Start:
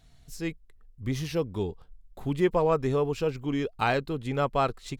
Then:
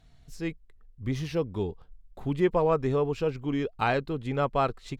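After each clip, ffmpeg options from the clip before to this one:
-af "highshelf=f=6k:g=-10.5"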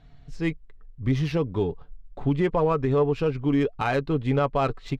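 -af "aecho=1:1:7:0.35,alimiter=limit=-19.5dB:level=0:latency=1:release=131,adynamicsmooth=sensitivity=7.5:basefreq=3.7k,volume=6dB"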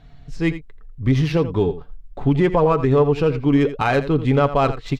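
-af "aecho=1:1:84:0.224,volume=6dB"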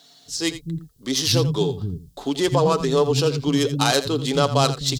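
-filter_complex "[0:a]highpass=63,acrossover=split=230[a][b];[a]adelay=260[c];[c][b]amix=inputs=2:normalize=0,aexciter=amount=12.8:drive=4.3:freq=3.5k,volume=-2dB"

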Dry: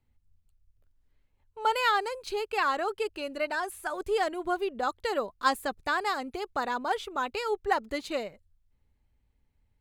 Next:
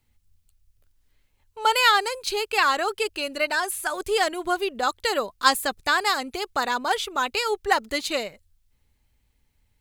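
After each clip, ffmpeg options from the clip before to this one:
-af "highshelf=f=2k:g=11.5,volume=3dB"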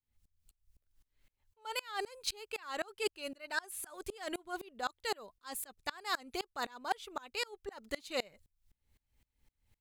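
-af "areverse,acompressor=threshold=-29dB:ratio=6,areverse,aeval=exprs='val(0)*pow(10,-29*if(lt(mod(-3.9*n/s,1),2*abs(-3.9)/1000),1-mod(-3.9*n/s,1)/(2*abs(-3.9)/1000),(mod(-3.9*n/s,1)-2*abs(-3.9)/1000)/(1-2*abs(-3.9)/1000))/20)':c=same,volume=1dB"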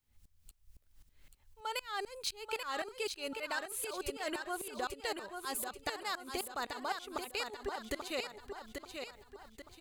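-filter_complex "[0:a]acompressor=threshold=-45dB:ratio=6,asplit=2[a][b];[b]aecho=0:1:836|1672|2508|3344|4180:0.501|0.216|0.0927|0.0398|0.0171[c];[a][c]amix=inputs=2:normalize=0,volume=9dB"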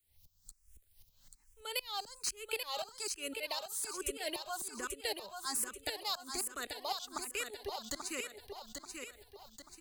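-filter_complex "[0:a]acrossover=split=250|530|4100[a][b][c][d];[d]aeval=exprs='0.0447*sin(PI/2*2.24*val(0)/0.0447)':c=same[e];[a][b][c][e]amix=inputs=4:normalize=0,asplit=2[f][g];[g]afreqshift=1.2[h];[f][h]amix=inputs=2:normalize=1"

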